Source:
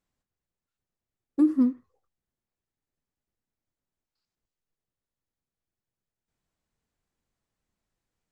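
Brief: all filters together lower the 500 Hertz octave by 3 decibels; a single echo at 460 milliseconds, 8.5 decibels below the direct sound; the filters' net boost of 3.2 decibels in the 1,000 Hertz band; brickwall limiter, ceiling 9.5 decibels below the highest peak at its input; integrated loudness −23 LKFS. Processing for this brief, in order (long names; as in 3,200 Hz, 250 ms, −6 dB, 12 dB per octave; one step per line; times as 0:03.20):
parametric band 500 Hz −7.5 dB
parametric band 1,000 Hz +5.5 dB
brickwall limiter −24 dBFS
single-tap delay 460 ms −8.5 dB
level +12 dB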